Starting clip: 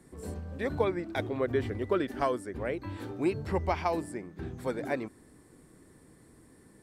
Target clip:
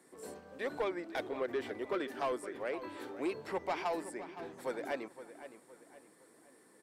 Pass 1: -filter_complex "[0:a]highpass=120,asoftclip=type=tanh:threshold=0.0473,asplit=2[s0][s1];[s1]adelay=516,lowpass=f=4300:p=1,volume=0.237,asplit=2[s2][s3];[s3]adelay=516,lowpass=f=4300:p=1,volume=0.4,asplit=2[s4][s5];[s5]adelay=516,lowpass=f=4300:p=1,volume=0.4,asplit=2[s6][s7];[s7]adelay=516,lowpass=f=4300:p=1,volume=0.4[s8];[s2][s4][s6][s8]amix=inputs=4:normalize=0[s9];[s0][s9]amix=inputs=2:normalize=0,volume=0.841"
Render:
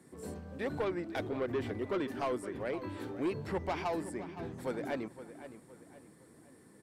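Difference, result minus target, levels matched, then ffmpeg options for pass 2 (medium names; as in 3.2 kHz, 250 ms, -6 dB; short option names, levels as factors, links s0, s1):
125 Hz band +13.0 dB
-filter_complex "[0:a]highpass=390,asoftclip=type=tanh:threshold=0.0473,asplit=2[s0][s1];[s1]adelay=516,lowpass=f=4300:p=1,volume=0.237,asplit=2[s2][s3];[s3]adelay=516,lowpass=f=4300:p=1,volume=0.4,asplit=2[s4][s5];[s5]adelay=516,lowpass=f=4300:p=1,volume=0.4,asplit=2[s6][s7];[s7]adelay=516,lowpass=f=4300:p=1,volume=0.4[s8];[s2][s4][s6][s8]amix=inputs=4:normalize=0[s9];[s0][s9]amix=inputs=2:normalize=0,volume=0.841"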